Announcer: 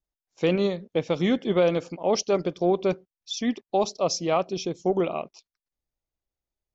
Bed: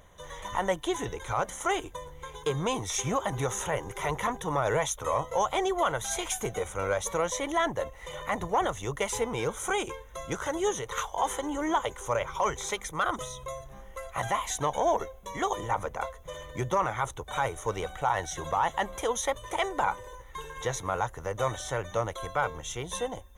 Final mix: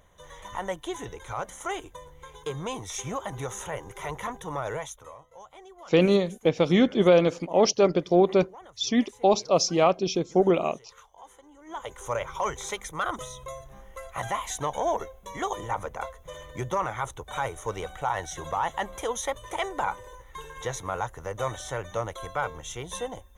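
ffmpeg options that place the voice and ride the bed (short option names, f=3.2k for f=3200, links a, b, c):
-filter_complex "[0:a]adelay=5500,volume=3dB[a];[1:a]volume=16dB,afade=t=out:st=4.61:d=0.56:silence=0.141254,afade=t=in:st=11.65:d=0.4:silence=0.1[b];[a][b]amix=inputs=2:normalize=0"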